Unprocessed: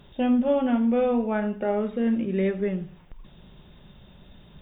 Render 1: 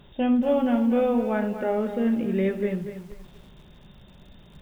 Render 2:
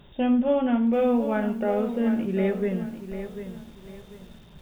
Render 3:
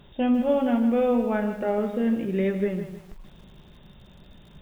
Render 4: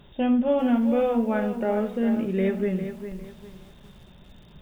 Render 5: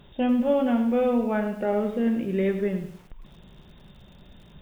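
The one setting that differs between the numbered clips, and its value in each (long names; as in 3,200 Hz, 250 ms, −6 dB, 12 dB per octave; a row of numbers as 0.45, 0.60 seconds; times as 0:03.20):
feedback echo at a low word length, delay time: 238, 745, 156, 404, 103 milliseconds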